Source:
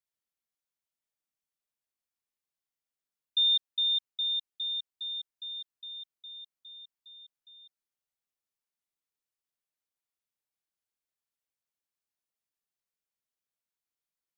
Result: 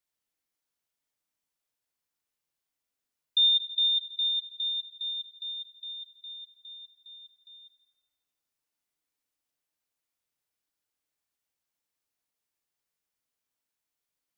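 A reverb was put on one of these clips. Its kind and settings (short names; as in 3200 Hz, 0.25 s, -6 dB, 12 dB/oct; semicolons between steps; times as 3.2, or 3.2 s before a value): FDN reverb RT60 1.3 s, high-frequency decay 0.85×, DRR 5.5 dB; gain +4 dB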